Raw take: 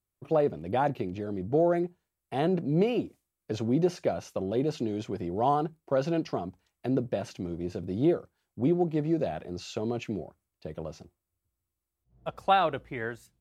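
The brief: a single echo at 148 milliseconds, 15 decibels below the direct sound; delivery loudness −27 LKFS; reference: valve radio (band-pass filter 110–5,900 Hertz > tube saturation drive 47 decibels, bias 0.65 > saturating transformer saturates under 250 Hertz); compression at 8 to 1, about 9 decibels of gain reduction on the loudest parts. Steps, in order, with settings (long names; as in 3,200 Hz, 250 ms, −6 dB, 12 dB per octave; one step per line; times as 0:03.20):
downward compressor 8 to 1, threshold −28 dBFS
band-pass filter 110–5,900 Hz
single-tap delay 148 ms −15 dB
tube saturation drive 47 dB, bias 0.65
saturating transformer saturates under 250 Hz
level +25.5 dB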